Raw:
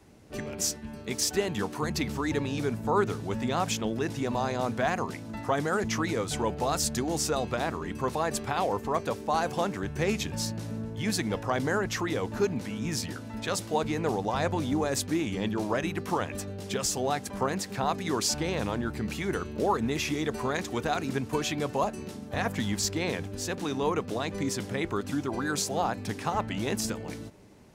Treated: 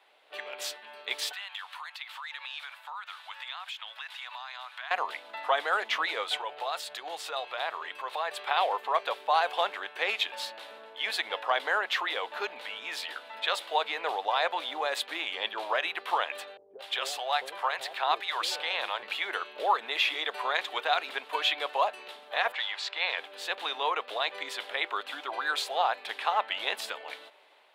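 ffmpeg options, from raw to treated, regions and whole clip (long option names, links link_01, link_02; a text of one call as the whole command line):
ffmpeg -i in.wav -filter_complex "[0:a]asettb=1/sr,asplit=3[link_01][link_02][link_03];[link_01]atrim=end=1.324[link_04];[link_02]atrim=start=1.32:end=4.91,asetpts=PTS-STARTPTS,afade=type=in:duration=0.004:curve=qsin,afade=type=out:start_time=3.586:duration=0.004:curve=qsin,highpass=frequency=1000:width=0.5412,highpass=frequency=1000:width=1.3066,acompressor=threshold=-42dB:ratio=4:attack=3.2:release=140:knee=1:detection=peak[link_05];[link_03]atrim=start=4.906[link_06];[link_04][link_05]acrossfade=duration=0.004:curve1=hsin:curve2=qsin[link_07];[link_07][link_06]acrossfade=duration=0.004:curve1=qsin:curve2=hsin,asettb=1/sr,asplit=3[link_08][link_09][link_10];[link_08]atrim=end=6.374[link_11];[link_09]atrim=start=6.37:end=8.47,asetpts=PTS-STARTPTS,afade=type=in:duration=0.004:curve=qsin,afade=type=out:start_time=2.096:duration=0.004:curve=qsin,lowshelf=frequency=170:width_type=q:width=3:gain=7,acompressor=threshold=-27dB:ratio=6:attack=3.2:release=140:knee=1:detection=peak[link_12];[link_10]atrim=start=8.466[link_13];[link_11][link_12]acrossfade=duration=0.004:curve1=hsin:curve2=qsin[link_14];[link_14][link_13]acrossfade=duration=0.004:curve1=qsin:curve2=hsin,asettb=1/sr,asplit=3[link_15][link_16][link_17];[link_15]atrim=end=16.574[link_18];[link_16]atrim=start=16.57:end=19.03,asetpts=PTS-STARTPTS,afade=type=in:duration=0.004:curve=qsin,afade=type=out:start_time=2.456:duration=0.004:curve=qsin,lowshelf=frequency=150:width_type=q:width=3:gain=8.5,acrossover=split=460[link_19][link_20];[link_20]adelay=220[link_21];[link_19][link_21]amix=inputs=2:normalize=0,atrim=end_sample=108486[link_22];[link_17]atrim=start=19.026[link_23];[link_18][link_22]acrossfade=duration=0.004:curve1=hsin:curve2=qsin[link_24];[link_24][link_23]acrossfade=duration=0.004:curve1=qsin:curve2=hsin,asettb=1/sr,asplit=3[link_25][link_26][link_27];[link_25]atrim=end=22.524[link_28];[link_26]atrim=start=22.52:end=23.18,asetpts=PTS-STARTPTS,afade=type=in:duration=0.004:curve=qsin,afade=type=out:start_time=0.656:duration=0.004:curve=qsin,highpass=630,lowpass=5300,bandreject=frequency=3200:width=20[link_29];[link_27]atrim=start=23.176[link_30];[link_28][link_29]acrossfade=duration=0.004:curve1=hsin:curve2=qsin[link_31];[link_31][link_30]acrossfade=duration=0.004:curve1=qsin:curve2=hsin,highpass=frequency=620:width=0.5412,highpass=frequency=620:width=1.3066,highshelf=frequency=4600:width_type=q:width=3:gain=-9.5,dynaudnorm=framelen=170:gausssize=5:maxgain=3dB" out.wav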